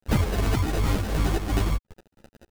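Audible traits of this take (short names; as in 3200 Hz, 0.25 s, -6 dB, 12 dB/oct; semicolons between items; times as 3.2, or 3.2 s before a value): a quantiser's noise floor 6-bit, dither none; phasing stages 12, 2.6 Hz, lowest notch 100–1200 Hz; aliases and images of a low sample rate 1100 Hz, jitter 0%; a shimmering, thickened sound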